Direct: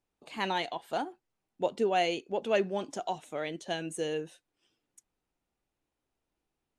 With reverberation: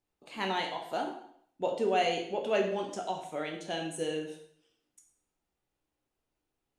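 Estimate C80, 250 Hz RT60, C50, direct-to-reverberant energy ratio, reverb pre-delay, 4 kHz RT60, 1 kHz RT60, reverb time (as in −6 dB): 9.0 dB, 0.65 s, 6.5 dB, 1.5 dB, 5 ms, 0.60 s, 0.65 s, 0.65 s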